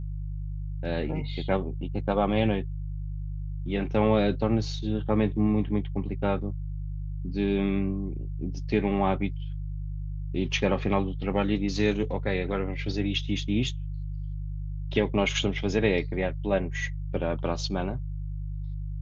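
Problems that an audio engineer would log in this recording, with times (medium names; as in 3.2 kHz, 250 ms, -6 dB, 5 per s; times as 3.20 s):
hum 50 Hz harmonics 3 -33 dBFS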